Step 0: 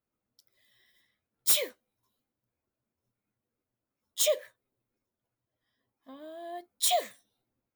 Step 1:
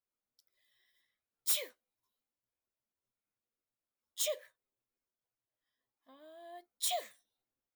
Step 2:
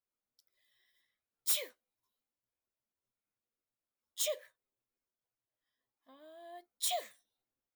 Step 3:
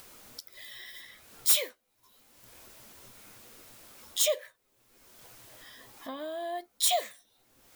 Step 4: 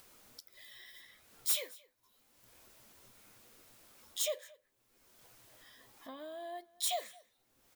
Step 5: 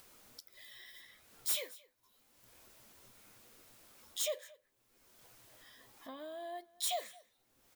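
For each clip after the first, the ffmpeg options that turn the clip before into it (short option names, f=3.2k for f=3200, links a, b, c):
-af "equalizer=f=140:t=o:w=2.9:g=-10,volume=-7.5dB"
-af anull
-af "acompressor=mode=upward:threshold=-36dB:ratio=2.5,volume=8.5dB"
-af "aecho=1:1:223:0.0668,volume=-8.5dB"
-af "asoftclip=type=tanh:threshold=-26dB"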